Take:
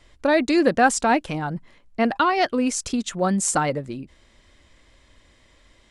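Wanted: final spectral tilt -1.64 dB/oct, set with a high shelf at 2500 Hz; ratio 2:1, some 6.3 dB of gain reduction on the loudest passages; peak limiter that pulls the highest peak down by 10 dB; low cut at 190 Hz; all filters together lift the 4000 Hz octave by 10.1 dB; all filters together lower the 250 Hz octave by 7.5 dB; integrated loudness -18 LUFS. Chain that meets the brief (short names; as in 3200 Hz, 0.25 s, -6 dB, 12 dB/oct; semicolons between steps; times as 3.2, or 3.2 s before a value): HPF 190 Hz; bell 250 Hz -8.5 dB; high shelf 2500 Hz +7.5 dB; bell 4000 Hz +6 dB; compressor 2:1, threshold -23 dBFS; gain +8.5 dB; limiter -6.5 dBFS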